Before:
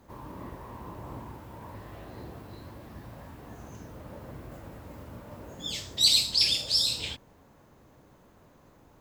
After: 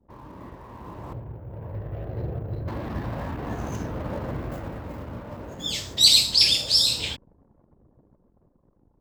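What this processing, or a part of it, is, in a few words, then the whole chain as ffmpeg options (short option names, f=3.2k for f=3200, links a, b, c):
voice memo with heavy noise removal: -filter_complex "[0:a]asettb=1/sr,asplit=3[a][b][c];[a]atrim=end=1.134[d];[b]atrim=start=1.13:end=2.68,asetpts=PTS-STARTPTS,afade=t=in:d=0.004:c=qsin,afade=t=out:st=1.546:d=0.004:c=qsin,equalizer=f=125:t=o:w=1:g=6,equalizer=f=250:t=o:w=1:g=-11,equalizer=f=500:t=o:w=1:g=4,equalizer=f=1k:t=o:w=1:g=-12,equalizer=f=2k:t=o:w=1:g=-5,equalizer=f=4k:t=o:w=1:g=-6,equalizer=f=8k:t=o:w=1:g=-5[e];[c]atrim=start=2.676[f];[d][e]acrossfade=d=0.004:c1=hsin:c2=qsin[g];[g][f]acrossfade=d=0.004:c1=qsin:c2=hsin,anlmdn=0.00158,dynaudnorm=f=700:g=5:m=15.5dB,volume=-1dB"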